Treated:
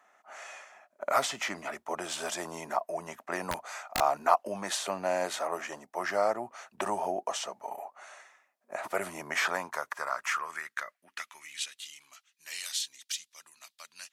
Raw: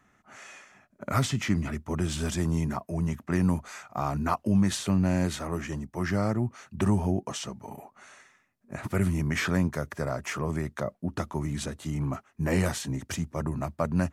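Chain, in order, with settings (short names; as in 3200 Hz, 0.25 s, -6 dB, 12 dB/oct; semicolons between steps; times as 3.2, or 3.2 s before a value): high-pass sweep 660 Hz -> 3600 Hz, 9.26–12.08; 3.51–4.01 wrapped overs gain 21.5 dB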